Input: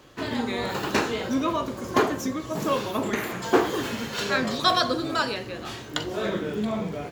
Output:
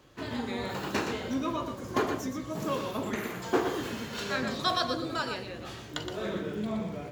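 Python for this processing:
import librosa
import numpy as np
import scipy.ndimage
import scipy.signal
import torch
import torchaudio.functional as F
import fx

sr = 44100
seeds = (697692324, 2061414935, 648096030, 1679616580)

y = fx.peak_eq(x, sr, hz=66.0, db=4.0, octaves=3.0)
y = y + 10.0 ** (-7.0 / 20.0) * np.pad(y, (int(119 * sr / 1000.0), 0))[:len(y)]
y = y * 10.0 ** (-7.5 / 20.0)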